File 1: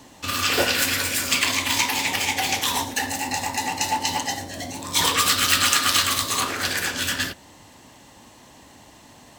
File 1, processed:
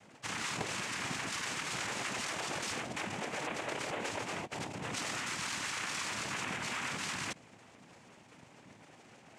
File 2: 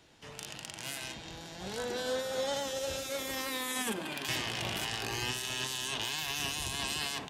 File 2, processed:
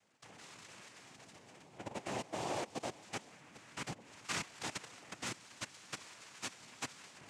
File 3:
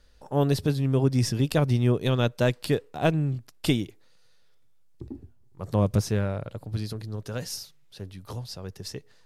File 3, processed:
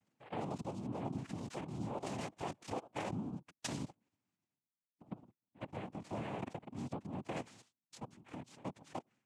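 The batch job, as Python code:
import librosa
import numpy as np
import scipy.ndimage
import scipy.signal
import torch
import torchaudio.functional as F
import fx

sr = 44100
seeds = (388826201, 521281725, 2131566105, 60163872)

y = fx.lpc_monotone(x, sr, seeds[0], pitch_hz=210.0, order=10)
y = fx.level_steps(y, sr, step_db=18)
y = fx.noise_vocoder(y, sr, seeds[1], bands=4)
y = y * 10.0 ** (-1.0 / 20.0)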